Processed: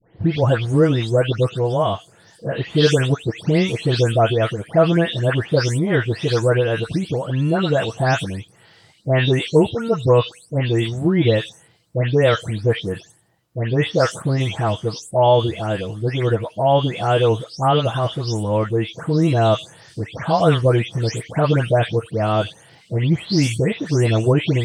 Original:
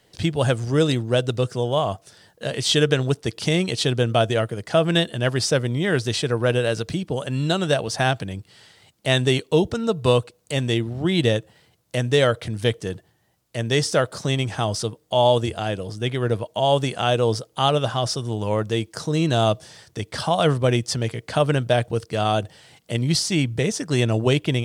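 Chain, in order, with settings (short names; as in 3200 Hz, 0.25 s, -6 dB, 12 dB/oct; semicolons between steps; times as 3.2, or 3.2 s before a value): spectral delay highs late, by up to 0.284 s; high shelf 3200 Hz -10 dB; gain +4.5 dB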